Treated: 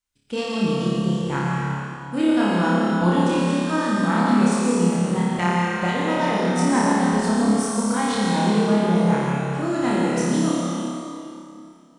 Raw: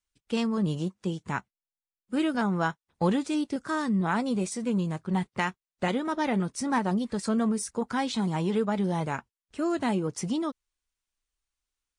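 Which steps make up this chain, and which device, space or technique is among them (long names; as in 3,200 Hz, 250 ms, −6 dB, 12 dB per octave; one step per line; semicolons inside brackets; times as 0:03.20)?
tunnel (flutter between parallel walls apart 4.9 metres, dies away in 0.98 s; convolution reverb RT60 2.6 s, pre-delay 102 ms, DRR −2 dB)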